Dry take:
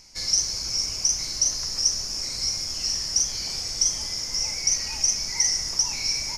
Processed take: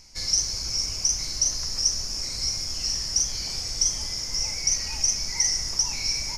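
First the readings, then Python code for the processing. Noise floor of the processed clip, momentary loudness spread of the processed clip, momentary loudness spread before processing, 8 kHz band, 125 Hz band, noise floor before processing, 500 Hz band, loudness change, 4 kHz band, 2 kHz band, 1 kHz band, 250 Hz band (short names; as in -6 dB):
-32 dBFS, 4 LU, 4 LU, -1.0 dB, +3.5 dB, -32 dBFS, -0.5 dB, -1.0 dB, -1.0 dB, -1.0 dB, -1.0 dB, +0.5 dB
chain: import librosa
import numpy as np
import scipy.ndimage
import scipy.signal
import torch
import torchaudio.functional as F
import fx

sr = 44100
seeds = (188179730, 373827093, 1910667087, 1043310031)

y = fx.low_shelf(x, sr, hz=100.0, db=7.5)
y = y * librosa.db_to_amplitude(-1.0)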